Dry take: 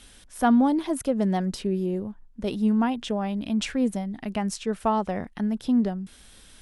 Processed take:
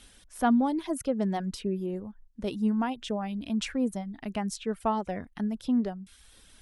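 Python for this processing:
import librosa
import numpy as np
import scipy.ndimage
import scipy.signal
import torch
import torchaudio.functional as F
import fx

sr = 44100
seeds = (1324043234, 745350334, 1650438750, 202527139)

y = fx.dereverb_blind(x, sr, rt60_s=0.58)
y = y * librosa.db_to_amplitude(-3.5)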